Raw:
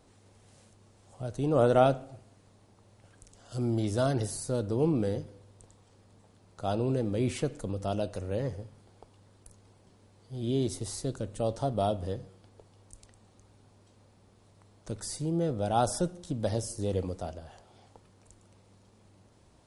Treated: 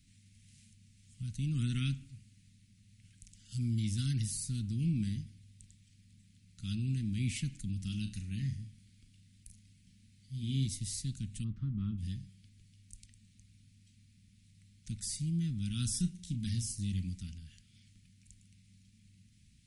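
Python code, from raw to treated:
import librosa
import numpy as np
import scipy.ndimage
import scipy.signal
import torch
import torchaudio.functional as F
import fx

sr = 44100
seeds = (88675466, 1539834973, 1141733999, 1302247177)

y = fx.room_flutter(x, sr, wall_m=6.4, rt60_s=0.25, at=(7.78, 10.66))
y = fx.lowpass_res(y, sr, hz=1100.0, q=3.6, at=(11.43, 11.97), fade=0.02)
y = fx.doubler(y, sr, ms=33.0, db=-10.0, at=(15.76, 16.75))
y = scipy.signal.sosfilt(scipy.signal.ellip(3, 1.0, 70, [210.0, 2200.0], 'bandstop', fs=sr, output='sos'), y)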